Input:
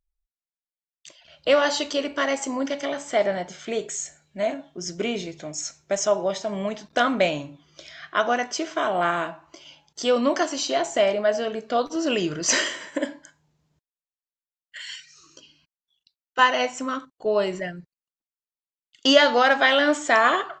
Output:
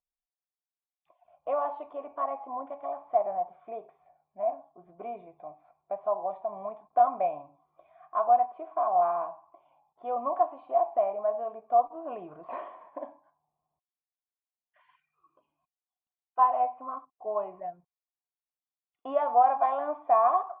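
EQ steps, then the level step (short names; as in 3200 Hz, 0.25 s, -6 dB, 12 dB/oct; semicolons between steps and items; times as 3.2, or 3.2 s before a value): vocal tract filter a; +5.5 dB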